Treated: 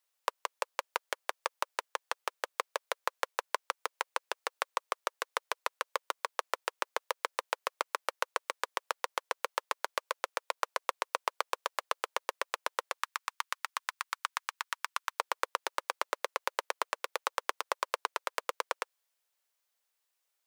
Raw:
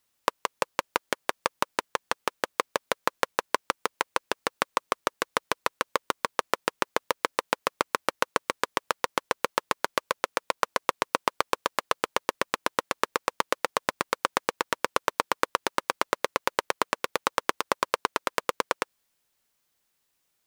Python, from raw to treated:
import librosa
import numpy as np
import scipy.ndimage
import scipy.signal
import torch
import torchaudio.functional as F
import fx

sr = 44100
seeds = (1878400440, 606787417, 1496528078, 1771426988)

y = fx.highpass(x, sr, hz=fx.steps((0.0, 470.0), (12.98, 1000.0), (15.19, 460.0)), slope=24)
y = y * 10.0 ** (-6.5 / 20.0)